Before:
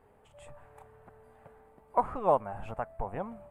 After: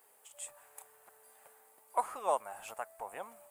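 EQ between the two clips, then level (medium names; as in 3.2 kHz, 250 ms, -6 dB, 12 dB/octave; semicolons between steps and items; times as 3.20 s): tone controls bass -14 dB, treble +13 dB; tilt EQ +3.5 dB/octave; -4.0 dB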